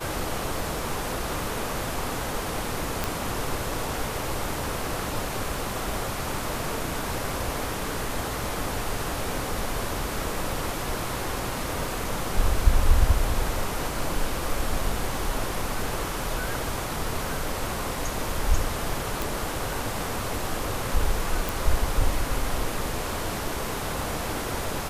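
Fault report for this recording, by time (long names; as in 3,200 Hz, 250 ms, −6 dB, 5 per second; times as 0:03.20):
0:03.04: click
0:19.22: click
0:21.49: click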